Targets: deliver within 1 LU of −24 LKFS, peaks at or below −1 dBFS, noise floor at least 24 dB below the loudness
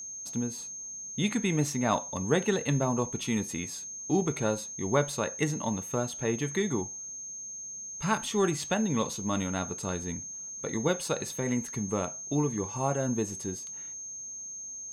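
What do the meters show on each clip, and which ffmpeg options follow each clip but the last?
interfering tone 6,400 Hz; level of the tone −38 dBFS; integrated loudness −31.0 LKFS; sample peak −12.5 dBFS; target loudness −24.0 LKFS
→ -af "bandreject=frequency=6400:width=30"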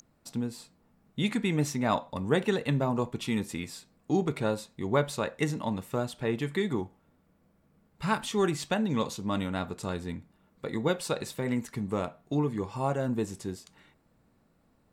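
interfering tone none found; integrated loudness −31.0 LKFS; sample peak −12.5 dBFS; target loudness −24.0 LKFS
→ -af "volume=7dB"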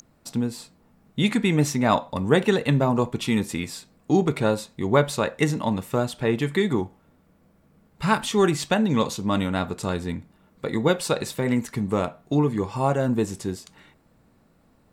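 integrated loudness −24.0 LKFS; sample peak −5.5 dBFS; background noise floor −61 dBFS

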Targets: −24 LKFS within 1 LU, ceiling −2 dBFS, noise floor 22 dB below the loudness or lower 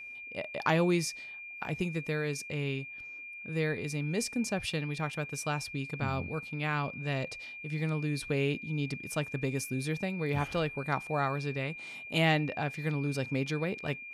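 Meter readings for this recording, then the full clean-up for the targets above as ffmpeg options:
interfering tone 2,400 Hz; level of the tone −42 dBFS; integrated loudness −33.0 LKFS; sample peak −13.5 dBFS; target loudness −24.0 LKFS
→ -af "bandreject=frequency=2400:width=30"
-af "volume=9dB"

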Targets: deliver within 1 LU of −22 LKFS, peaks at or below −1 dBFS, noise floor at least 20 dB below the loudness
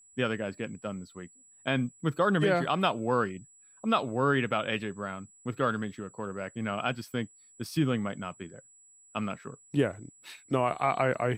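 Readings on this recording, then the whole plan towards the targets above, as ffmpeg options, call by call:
interfering tone 7,800 Hz; level of the tone −56 dBFS; integrated loudness −30.5 LKFS; sample peak −14.0 dBFS; target loudness −22.0 LKFS
→ -af "bandreject=frequency=7800:width=30"
-af "volume=8.5dB"

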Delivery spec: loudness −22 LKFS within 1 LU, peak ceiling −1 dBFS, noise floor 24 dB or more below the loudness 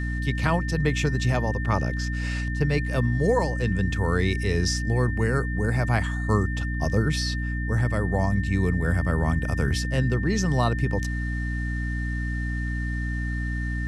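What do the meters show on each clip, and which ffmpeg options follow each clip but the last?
mains hum 60 Hz; hum harmonics up to 300 Hz; level of the hum −25 dBFS; interfering tone 1,800 Hz; level of the tone −34 dBFS; integrated loudness −25.5 LKFS; sample peak −9.0 dBFS; target loudness −22.0 LKFS
→ -af "bandreject=frequency=60:width_type=h:width=6,bandreject=frequency=120:width_type=h:width=6,bandreject=frequency=180:width_type=h:width=6,bandreject=frequency=240:width_type=h:width=6,bandreject=frequency=300:width_type=h:width=6"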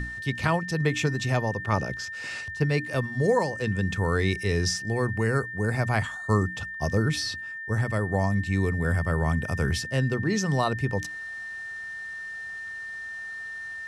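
mains hum none found; interfering tone 1,800 Hz; level of the tone −34 dBFS
→ -af "bandreject=frequency=1800:width=30"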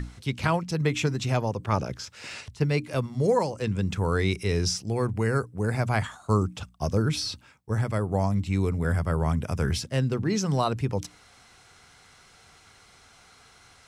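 interfering tone none found; integrated loudness −27.0 LKFS; sample peak −11.0 dBFS; target loudness −22.0 LKFS
→ -af "volume=5dB"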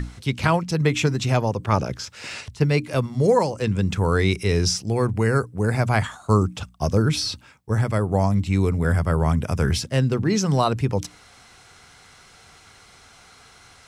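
integrated loudness −22.0 LKFS; sample peak −6.0 dBFS; background noise floor −51 dBFS

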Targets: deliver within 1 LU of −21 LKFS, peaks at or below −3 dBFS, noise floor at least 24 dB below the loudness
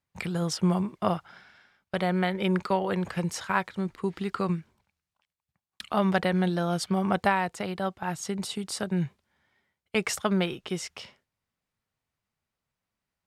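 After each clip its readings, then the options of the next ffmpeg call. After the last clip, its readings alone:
integrated loudness −28.5 LKFS; sample peak −9.5 dBFS; target loudness −21.0 LKFS
→ -af "volume=7.5dB,alimiter=limit=-3dB:level=0:latency=1"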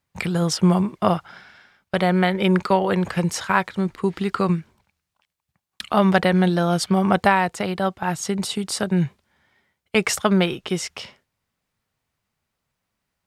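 integrated loudness −21.5 LKFS; sample peak −3.0 dBFS; background noise floor −80 dBFS

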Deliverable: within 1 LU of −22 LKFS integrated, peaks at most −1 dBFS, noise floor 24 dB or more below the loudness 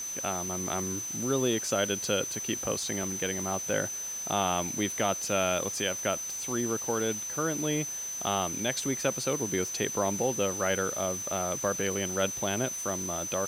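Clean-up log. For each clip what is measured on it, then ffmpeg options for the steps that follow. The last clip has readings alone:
interfering tone 6,100 Hz; level of the tone −34 dBFS; background noise floor −37 dBFS; target noise floor −54 dBFS; integrated loudness −29.5 LKFS; sample peak −13.5 dBFS; target loudness −22.0 LKFS
→ -af "bandreject=frequency=6100:width=30"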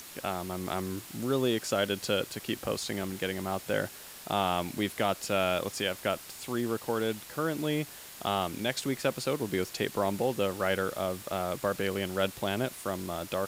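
interfering tone none found; background noise floor −47 dBFS; target noise floor −56 dBFS
→ -af "afftdn=noise_reduction=9:noise_floor=-47"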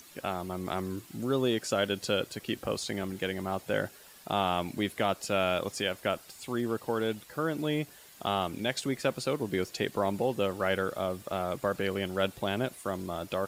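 background noise floor −54 dBFS; target noise floor −56 dBFS
→ -af "afftdn=noise_reduction=6:noise_floor=-54"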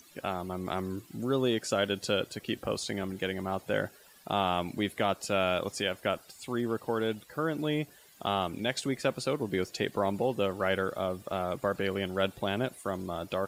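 background noise floor −57 dBFS; integrated loudness −32.0 LKFS; sample peak −14.0 dBFS; target loudness −22.0 LKFS
→ -af "volume=10dB"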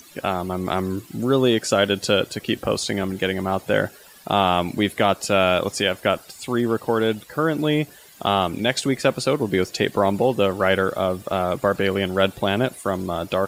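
integrated loudness −22.0 LKFS; sample peak −4.0 dBFS; background noise floor −47 dBFS

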